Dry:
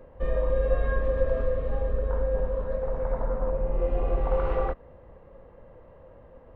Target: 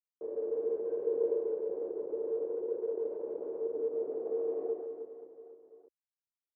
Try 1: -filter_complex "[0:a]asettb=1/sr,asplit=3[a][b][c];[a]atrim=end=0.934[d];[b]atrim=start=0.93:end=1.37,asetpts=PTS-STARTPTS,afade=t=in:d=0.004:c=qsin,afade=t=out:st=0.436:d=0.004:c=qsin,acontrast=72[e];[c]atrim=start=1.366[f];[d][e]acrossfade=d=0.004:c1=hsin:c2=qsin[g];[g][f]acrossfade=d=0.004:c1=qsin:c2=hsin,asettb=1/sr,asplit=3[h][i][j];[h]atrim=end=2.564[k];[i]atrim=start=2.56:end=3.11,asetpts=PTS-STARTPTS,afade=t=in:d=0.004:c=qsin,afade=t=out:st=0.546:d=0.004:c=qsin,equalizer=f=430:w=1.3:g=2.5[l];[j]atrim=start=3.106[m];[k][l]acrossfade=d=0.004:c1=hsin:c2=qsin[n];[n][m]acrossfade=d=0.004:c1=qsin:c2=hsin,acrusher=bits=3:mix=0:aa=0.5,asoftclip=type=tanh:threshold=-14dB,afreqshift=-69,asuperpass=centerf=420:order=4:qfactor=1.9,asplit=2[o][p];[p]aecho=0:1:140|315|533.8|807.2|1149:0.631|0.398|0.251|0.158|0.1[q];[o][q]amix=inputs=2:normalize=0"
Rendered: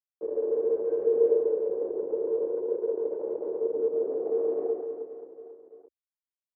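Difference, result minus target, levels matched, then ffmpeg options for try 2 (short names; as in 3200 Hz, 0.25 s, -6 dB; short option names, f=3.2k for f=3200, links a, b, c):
soft clip: distortion -8 dB
-filter_complex "[0:a]asettb=1/sr,asplit=3[a][b][c];[a]atrim=end=0.934[d];[b]atrim=start=0.93:end=1.37,asetpts=PTS-STARTPTS,afade=t=in:d=0.004:c=qsin,afade=t=out:st=0.436:d=0.004:c=qsin,acontrast=72[e];[c]atrim=start=1.366[f];[d][e]acrossfade=d=0.004:c1=hsin:c2=qsin[g];[g][f]acrossfade=d=0.004:c1=qsin:c2=hsin,asettb=1/sr,asplit=3[h][i][j];[h]atrim=end=2.564[k];[i]atrim=start=2.56:end=3.11,asetpts=PTS-STARTPTS,afade=t=in:d=0.004:c=qsin,afade=t=out:st=0.546:d=0.004:c=qsin,equalizer=f=430:w=1.3:g=2.5[l];[j]atrim=start=3.106[m];[k][l]acrossfade=d=0.004:c1=hsin:c2=qsin[n];[n][m]acrossfade=d=0.004:c1=qsin:c2=hsin,acrusher=bits=3:mix=0:aa=0.5,asoftclip=type=tanh:threshold=-26dB,afreqshift=-69,asuperpass=centerf=420:order=4:qfactor=1.9,asplit=2[o][p];[p]aecho=0:1:140|315|533.8|807.2|1149:0.631|0.398|0.251|0.158|0.1[q];[o][q]amix=inputs=2:normalize=0"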